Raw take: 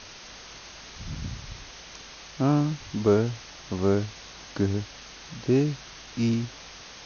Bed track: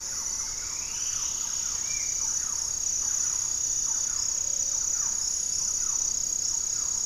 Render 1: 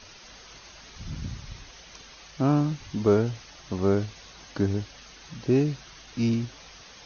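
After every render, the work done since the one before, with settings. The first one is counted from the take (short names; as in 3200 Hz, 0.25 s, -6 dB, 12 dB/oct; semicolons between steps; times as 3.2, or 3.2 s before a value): denoiser 7 dB, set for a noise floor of -45 dBFS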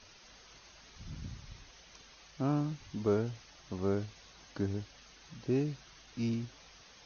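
gain -9 dB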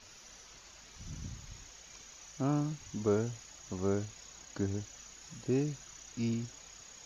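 add bed track -26 dB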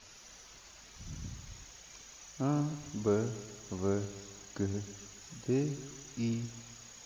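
lo-fi delay 0.137 s, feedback 55%, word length 10-bit, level -14.5 dB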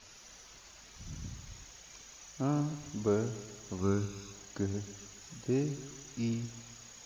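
3.81–4.33 comb 0.8 ms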